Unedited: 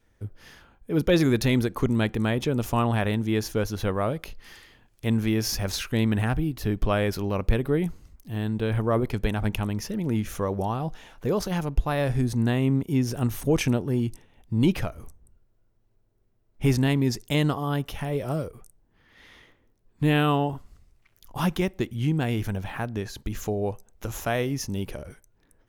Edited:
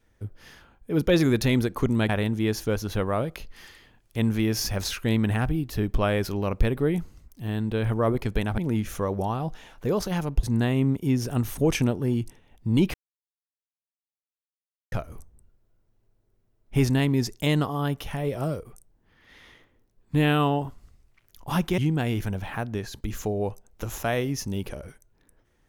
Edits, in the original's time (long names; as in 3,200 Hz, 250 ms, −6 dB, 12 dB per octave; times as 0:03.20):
0:02.09–0:02.97: remove
0:09.46–0:09.98: remove
0:11.83–0:12.29: remove
0:14.80: splice in silence 1.98 s
0:21.66–0:22.00: remove